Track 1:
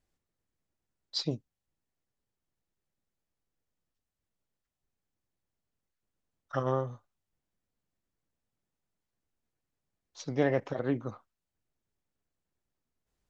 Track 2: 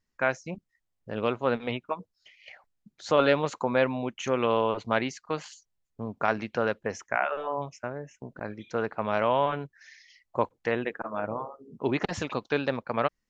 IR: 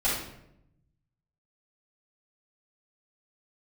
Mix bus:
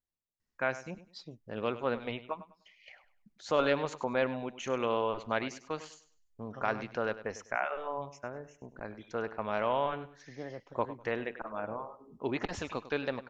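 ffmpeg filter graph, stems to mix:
-filter_complex "[0:a]volume=-15.5dB[link_01];[1:a]asubboost=boost=4.5:cutoff=53,adelay=400,volume=-5.5dB,asplit=2[link_02][link_03];[link_03]volume=-14.5dB,aecho=0:1:100|200|300|400:1|0.26|0.0676|0.0176[link_04];[link_01][link_02][link_04]amix=inputs=3:normalize=0"

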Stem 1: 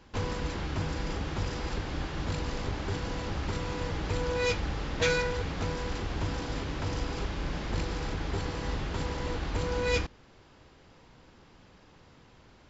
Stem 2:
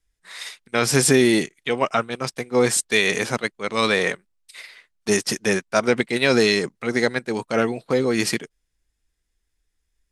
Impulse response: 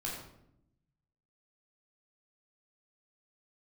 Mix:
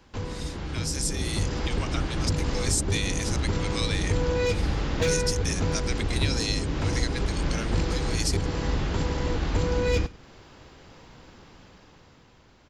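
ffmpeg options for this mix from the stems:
-filter_complex "[0:a]volume=20.5dB,asoftclip=hard,volume=-20.5dB,volume=0dB,asplit=2[link_01][link_02];[link_02]volume=-21.5dB[link_03];[1:a]bandpass=frequency=5900:width_type=q:width=1.3:csg=0,volume=0dB[link_04];[link_03]aecho=0:1:99:1[link_05];[link_01][link_04][link_05]amix=inputs=3:normalize=0,acrossover=split=490[link_06][link_07];[link_07]acompressor=threshold=-44dB:ratio=2[link_08];[link_06][link_08]amix=inputs=2:normalize=0,highshelf=frequency=6400:gain=4.5,dynaudnorm=framelen=110:gausssize=21:maxgain=7dB"

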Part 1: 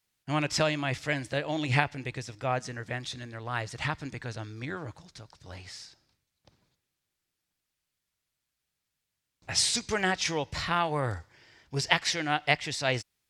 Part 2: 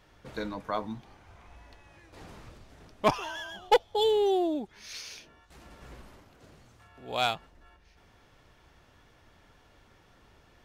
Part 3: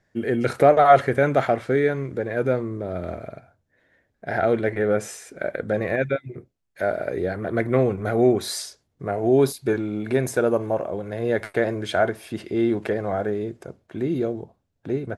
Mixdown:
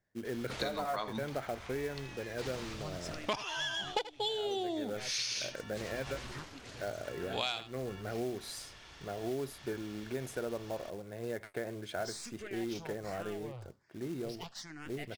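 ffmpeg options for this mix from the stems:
ffmpeg -i stem1.wav -i stem2.wav -i stem3.wav -filter_complex "[0:a]acontrast=30,aeval=exprs='(tanh(11.2*val(0)+0.55)-tanh(0.55))/11.2':channel_layout=same,asplit=2[link_01][link_02];[link_02]afreqshift=1.2[link_03];[link_01][link_03]amix=inputs=2:normalize=1,adelay=2500,volume=-16dB[link_04];[1:a]lowpass=5000,crystalizer=i=7.5:c=0,adelay=250,volume=1.5dB,asplit=2[link_05][link_06];[link_06]volume=-15dB[link_07];[2:a]acrusher=bits=4:mode=log:mix=0:aa=0.000001,volume=-14.5dB[link_08];[link_07]aecho=0:1:79:1[link_09];[link_04][link_05][link_08][link_09]amix=inputs=4:normalize=0,acompressor=threshold=-32dB:ratio=10" out.wav

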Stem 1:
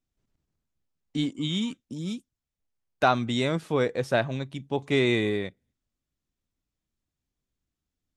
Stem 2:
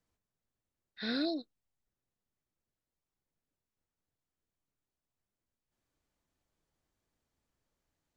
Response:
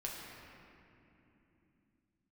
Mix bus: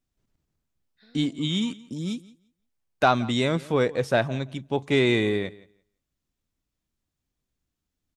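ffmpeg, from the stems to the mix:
-filter_complex "[0:a]acontrast=49,volume=-3.5dB,asplit=2[link_01][link_02];[link_02]volume=-21dB[link_03];[1:a]acompressor=threshold=-37dB:ratio=6,volume=-17.5dB[link_04];[link_03]aecho=0:1:171|342|513:1|0.15|0.0225[link_05];[link_01][link_04][link_05]amix=inputs=3:normalize=0"

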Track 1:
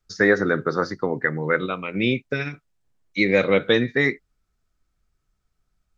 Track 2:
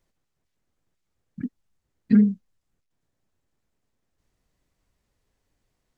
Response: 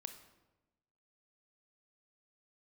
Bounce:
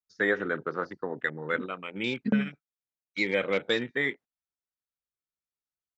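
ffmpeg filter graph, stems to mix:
-filter_complex "[0:a]afwtdn=0.0251,highshelf=frequency=2800:gain=9.5,volume=-8.5dB,asplit=2[link_01][link_02];[1:a]adelay=150,volume=-4.5dB[link_03];[link_02]apad=whole_len=269945[link_04];[link_03][link_04]sidechaingate=range=-33dB:threshold=-44dB:ratio=16:detection=peak[link_05];[link_01][link_05]amix=inputs=2:normalize=0,highpass=frequency=240:poles=1,highshelf=frequency=5500:gain=-10"

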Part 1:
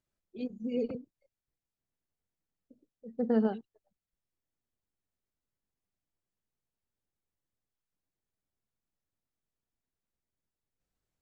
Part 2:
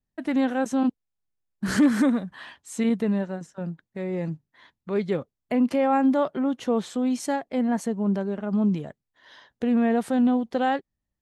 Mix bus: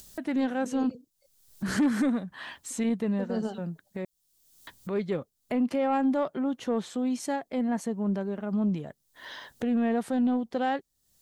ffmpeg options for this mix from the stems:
ffmpeg -i stem1.wav -i stem2.wav -filter_complex "[0:a]aexciter=amount=6.1:drive=4.8:freq=3200,volume=-2.5dB[link_01];[1:a]volume=-3.5dB,asplit=3[link_02][link_03][link_04];[link_02]atrim=end=4.05,asetpts=PTS-STARTPTS,afade=type=out:start_time=4.046:duration=0.004:curve=hsin[link_05];[link_03]atrim=start=4.05:end=4.67,asetpts=PTS-STARTPTS,volume=0[link_06];[link_04]atrim=start=4.67,asetpts=PTS-STARTPTS,afade=type=in:duration=0.004:curve=hsin[link_07];[link_05][link_06][link_07]concat=n=3:v=0:a=1,asplit=2[link_08][link_09];[link_09]apad=whole_len=494367[link_10];[link_01][link_10]sidechaincompress=threshold=-26dB:ratio=8:attack=7.6:release=991[link_11];[link_11][link_08]amix=inputs=2:normalize=0,acompressor=mode=upward:threshold=-31dB:ratio=2.5,asoftclip=type=tanh:threshold=-17dB" out.wav

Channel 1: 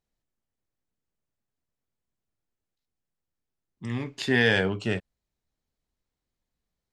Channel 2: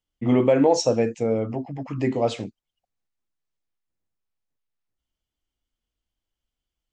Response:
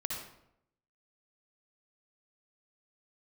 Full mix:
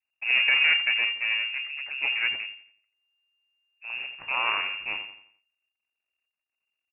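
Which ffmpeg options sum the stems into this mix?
-filter_complex "[0:a]volume=-2.5dB,asplit=2[link_01][link_02];[link_02]volume=-9dB[link_03];[1:a]volume=-1dB,asplit=2[link_04][link_05];[link_05]volume=-14.5dB[link_06];[link_03][link_06]amix=inputs=2:normalize=0,aecho=0:1:86|172|258|344|430:1|0.38|0.144|0.0549|0.0209[link_07];[link_01][link_04][link_07]amix=inputs=3:normalize=0,adynamicequalizer=threshold=0.00794:dfrequency=2200:dqfactor=1.5:tfrequency=2200:tqfactor=1.5:attack=5:release=100:ratio=0.375:range=1.5:mode=cutabove:tftype=bell,aeval=exprs='max(val(0),0)':channel_layout=same,lowpass=frequency=2400:width_type=q:width=0.5098,lowpass=frequency=2400:width_type=q:width=0.6013,lowpass=frequency=2400:width_type=q:width=0.9,lowpass=frequency=2400:width_type=q:width=2.563,afreqshift=-2800"

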